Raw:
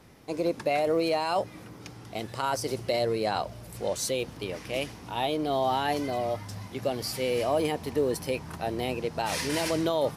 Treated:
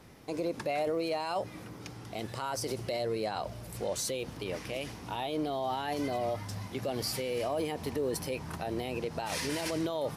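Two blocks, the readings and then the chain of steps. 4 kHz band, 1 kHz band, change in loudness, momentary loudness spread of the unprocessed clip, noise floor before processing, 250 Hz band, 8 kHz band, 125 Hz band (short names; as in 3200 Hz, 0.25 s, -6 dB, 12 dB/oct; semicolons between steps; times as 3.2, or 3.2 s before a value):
-4.5 dB, -6.0 dB, -5.0 dB, 11 LU, -46 dBFS, -4.0 dB, -2.5 dB, -3.0 dB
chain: limiter -24 dBFS, peak gain reduction 9 dB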